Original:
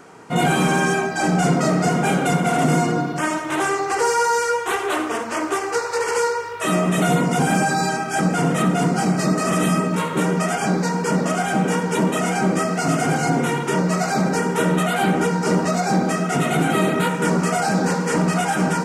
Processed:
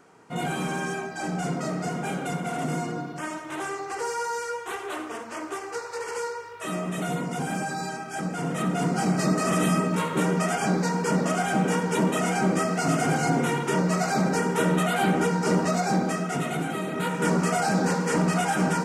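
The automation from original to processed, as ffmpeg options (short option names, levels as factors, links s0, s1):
-af "volume=1.68,afade=t=in:st=8.36:d=0.83:silence=0.446684,afade=t=out:st=15.75:d=1.11:silence=0.375837,afade=t=in:st=16.86:d=0.4:silence=0.375837"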